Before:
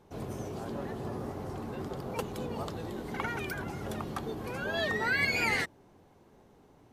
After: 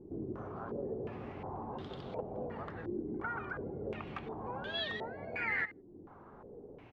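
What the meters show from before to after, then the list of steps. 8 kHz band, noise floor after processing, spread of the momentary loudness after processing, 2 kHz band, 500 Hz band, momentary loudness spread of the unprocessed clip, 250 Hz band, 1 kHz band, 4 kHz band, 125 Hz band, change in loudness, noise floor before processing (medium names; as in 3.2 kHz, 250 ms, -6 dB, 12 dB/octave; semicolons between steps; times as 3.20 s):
under -25 dB, -55 dBFS, 17 LU, -7.5 dB, -3.5 dB, 12 LU, -4.5 dB, -5.0 dB, -4.0 dB, -7.0 dB, -6.0 dB, -61 dBFS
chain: compression 2:1, threshold -54 dBFS, peak gain reduction 16 dB; delay 162 ms -16 dB; step-sequenced low-pass 2.8 Hz 340–3500 Hz; trim +3.5 dB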